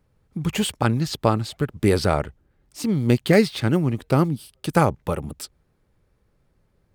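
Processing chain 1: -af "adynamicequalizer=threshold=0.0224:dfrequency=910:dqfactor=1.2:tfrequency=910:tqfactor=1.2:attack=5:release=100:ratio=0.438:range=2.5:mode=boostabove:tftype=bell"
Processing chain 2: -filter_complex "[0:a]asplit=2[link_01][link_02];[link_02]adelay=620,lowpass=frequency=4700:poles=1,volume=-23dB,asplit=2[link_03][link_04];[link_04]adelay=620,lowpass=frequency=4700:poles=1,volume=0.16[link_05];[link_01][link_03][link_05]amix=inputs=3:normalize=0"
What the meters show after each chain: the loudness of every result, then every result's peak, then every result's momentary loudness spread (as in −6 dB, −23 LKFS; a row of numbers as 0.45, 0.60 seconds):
−21.5, −22.5 LKFS; −1.5, −3.0 dBFS; 12, 15 LU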